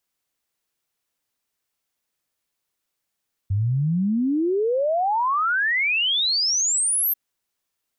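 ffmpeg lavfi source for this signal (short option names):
-f lavfi -i "aevalsrc='0.119*clip(min(t,3.64-t)/0.01,0,1)*sin(2*PI*94*3.64/log(13000/94)*(exp(log(13000/94)*t/3.64)-1))':d=3.64:s=44100"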